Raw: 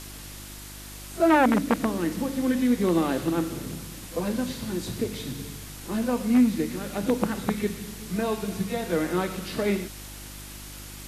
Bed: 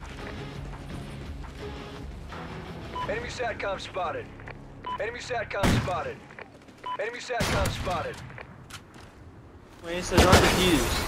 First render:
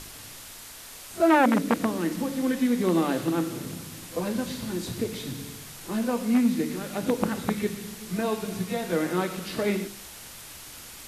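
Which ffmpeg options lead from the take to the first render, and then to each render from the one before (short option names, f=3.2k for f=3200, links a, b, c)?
-af "bandreject=f=50:t=h:w=4,bandreject=f=100:t=h:w=4,bandreject=f=150:t=h:w=4,bandreject=f=200:t=h:w=4,bandreject=f=250:t=h:w=4,bandreject=f=300:t=h:w=4,bandreject=f=350:t=h:w=4,bandreject=f=400:t=h:w=4,bandreject=f=450:t=h:w=4,bandreject=f=500:t=h:w=4,bandreject=f=550:t=h:w=4"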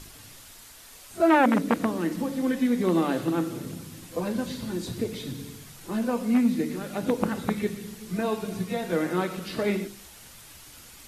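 -af "afftdn=nr=6:nf=-44"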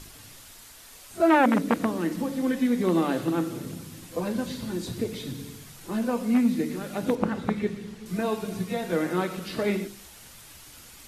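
-filter_complex "[0:a]asettb=1/sr,asplit=3[a][b][c];[a]atrim=end=7.154[d];[b]atrim=start=7.15:end=8.06,asetpts=PTS-STARTPTS,afade=t=in:d=0.004:c=qsin,afade=t=out:st=0.906:d=0.004:c=qsin,aemphasis=mode=reproduction:type=50fm[e];[c]atrim=start=8.056[f];[d][e]acrossfade=d=0.004:c1=hsin:c2=qsin[g];[g][f]acrossfade=d=0.004:c1=qsin:c2=hsin"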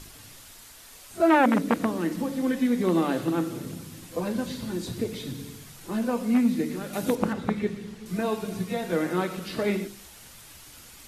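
-filter_complex "[0:a]asettb=1/sr,asplit=3[a][b][c];[a]atrim=end=6.934[d];[b]atrim=start=6.93:end=7.33,asetpts=PTS-STARTPTS,afade=t=in:d=0.004:c=qsin,afade=t=out:st=0.396:d=0.004:c=qsin,highshelf=f=5.2k:g=10[e];[c]atrim=start=7.326[f];[d][e]acrossfade=d=0.004:c1=hsin:c2=qsin[g];[g][f]acrossfade=d=0.004:c1=qsin:c2=hsin"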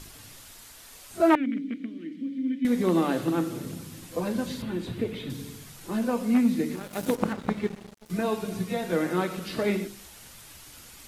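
-filter_complex "[0:a]asettb=1/sr,asplit=3[a][b][c];[a]atrim=end=1.354[d];[b]atrim=start=1.35:end=2.65,asetpts=PTS-STARTPTS,afade=t=in:d=0.004:c=qsin,afade=t=out:st=1.296:d=0.004:c=qsin,asplit=3[e][f][g];[e]bandpass=f=270:t=q:w=8,volume=0dB[h];[f]bandpass=f=2.29k:t=q:w=8,volume=-6dB[i];[g]bandpass=f=3.01k:t=q:w=8,volume=-9dB[j];[h][i][j]amix=inputs=3:normalize=0[k];[c]atrim=start=2.646[l];[d][k]acrossfade=d=0.004:c1=hsin:c2=qsin[m];[m][l]acrossfade=d=0.004:c1=qsin:c2=hsin,asettb=1/sr,asplit=3[n][o][p];[n]atrim=end=4.624[q];[o]atrim=start=4.62:end=5.3,asetpts=PTS-STARTPTS,afade=t=in:d=0.004:c=qsin,afade=t=out:st=0.676:d=0.004:c=qsin,highshelf=f=4k:t=q:w=1.5:g=-9.5[r];[p]atrim=start=5.296[s];[q][r]acrossfade=d=0.004:c1=hsin:c2=qsin[t];[t][s]acrossfade=d=0.004:c1=qsin:c2=hsin,asettb=1/sr,asplit=3[u][v][w];[u]atrim=end=6.754[x];[v]atrim=start=6.75:end=8.1,asetpts=PTS-STARTPTS,afade=t=in:d=0.004:c=qsin,afade=t=out:st=1.346:d=0.004:c=qsin,aeval=exprs='sgn(val(0))*max(abs(val(0))-0.0106,0)':c=same[y];[w]atrim=start=8.096[z];[x][y]acrossfade=d=0.004:c1=hsin:c2=qsin[aa];[aa][z]acrossfade=d=0.004:c1=qsin:c2=hsin"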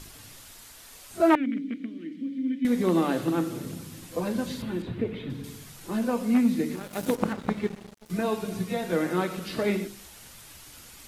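-filter_complex "[0:a]asettb=1/sr,asplit=3[a][b][c];[a]atrim=end=4.824[d];[b]atrim=start=4.82:end=5.44,asetpts=PTS-STARTPTS,afade=t=in:d=0.004:c=qsin,afade=t=out:st=0.616:d=0.004:c=qsin,bass=f=250:g=1,treble=f=4k:g=-14[e];[c]atrim=start=5.436[f];[d][e]acrossfade=d=0.004:c1=hsin:c2=qsin[g];[g][f]acrossfade=d=0.004:c1=qsin:c2=hsin"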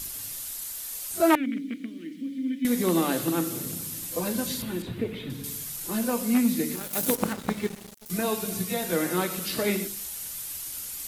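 -af "aemphasis=mode=production:type=75fm"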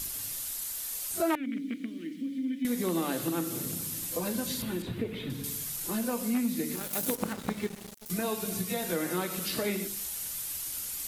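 -af "acompressor=threshold=-31dB:ratio=2"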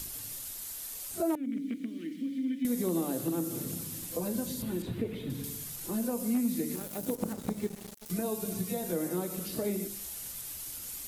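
-filter_complex "[0:a]acrossover=split=790|5500[a][b][c];[b]acompressor=threshold=-51dB:ratio=6[d];[c]alimiter=level_in=8dB:limit=-24dB:level=0:latency=1:release=178,volume=-8dB[e];[a][d][e]amix=inputs=3:normalize=0"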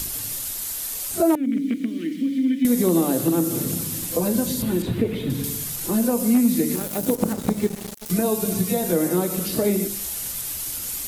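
-af "volume=11.5dB"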